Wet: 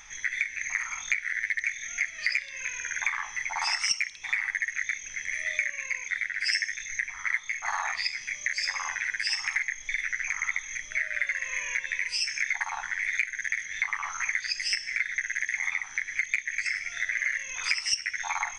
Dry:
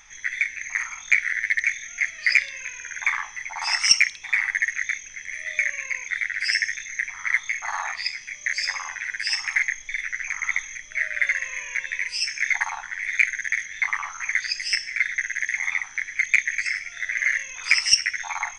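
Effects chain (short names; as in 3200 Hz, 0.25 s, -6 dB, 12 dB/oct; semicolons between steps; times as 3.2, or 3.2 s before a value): compressor 4:1, threshold -28 dBFS, peak gain reduction 15 dB; 5.57–7.66 three-band expander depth 70%; gain +2 dB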